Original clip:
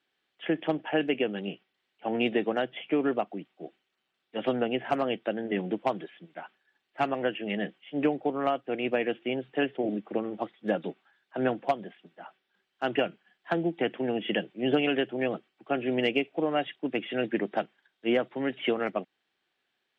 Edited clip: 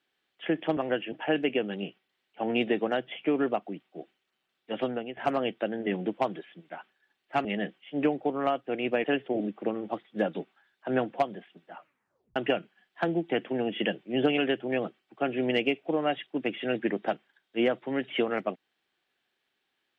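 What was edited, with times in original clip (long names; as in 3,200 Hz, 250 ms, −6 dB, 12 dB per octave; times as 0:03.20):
0:04.36–0:04.82: fade out, to −13.5 dB
0:07.10–0:07.45: move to 0:00.77
0:09.04–0:09.53: remove
0:12.25: tape stop 0.60 s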